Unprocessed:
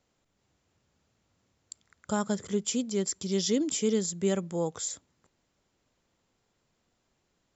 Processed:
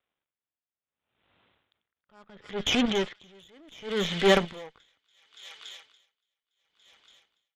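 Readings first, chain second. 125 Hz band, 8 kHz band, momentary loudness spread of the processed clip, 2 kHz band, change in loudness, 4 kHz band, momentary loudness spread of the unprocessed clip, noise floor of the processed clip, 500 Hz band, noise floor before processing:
-1.5 dB, n/a, 22 LU, +12.5 dB, +3.5 dB, +7.5 dB, 8 LU, under -85 dBFS, +2.0 dB, -76 dBFS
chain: G.711 law mismatch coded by A; in parallel at +1.5 dB: level quantiser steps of 21 dB; on the sum: steep low-pass 3700 Hz 96 dB/oct; low shelf 340 Hz -11.5 dB; transient shaper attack -6 dB, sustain +6 dB; AGC gain up to 14 dB; added harmonics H 8 -18 dB, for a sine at -6 dBFS; on a send: thin delay 0.285 s, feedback 72%, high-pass 2500 Hz, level -8 dB; on the sum: dynamic EQ 1900 Hz, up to +4 dB, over -41 dBFS, Q 1.5; dB-linear tremolo 0.71 Hz, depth 37 dB

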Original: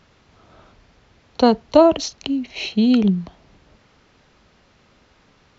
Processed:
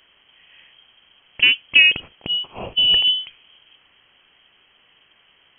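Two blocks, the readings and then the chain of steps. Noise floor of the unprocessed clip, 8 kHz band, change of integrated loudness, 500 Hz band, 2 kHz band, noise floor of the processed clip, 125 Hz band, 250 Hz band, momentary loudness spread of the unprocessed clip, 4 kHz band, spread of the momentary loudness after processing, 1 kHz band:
-57 dBFS, n/a, +2.5 dB, -22.5 dB, +18.0 dB, -58 dBFS, -14.5 dB, -25.5 dB, 11 LU, +16.0 dB, 11 LU, -18.0 dB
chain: inverted band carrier 3200 Hz; gain -1 dB

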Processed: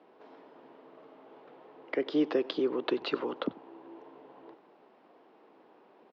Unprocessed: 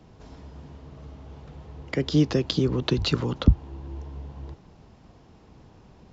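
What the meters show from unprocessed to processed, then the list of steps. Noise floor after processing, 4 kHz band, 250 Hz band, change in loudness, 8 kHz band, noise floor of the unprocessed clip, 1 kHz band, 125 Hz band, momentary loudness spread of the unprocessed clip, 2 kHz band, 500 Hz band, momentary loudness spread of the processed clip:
-61 dBFS, -10.0 dB, -7.0 dB, -6.5 dB, n/a, -53 dBFS, -2.0 dB, -29.5 dB, 22 LU, -4.5 dB, -1.5 dB, 22 LU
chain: HPF 330 Hz 24 dB/oct; air absorption 390 m; on a send: echo 93 ms -21.5 dB

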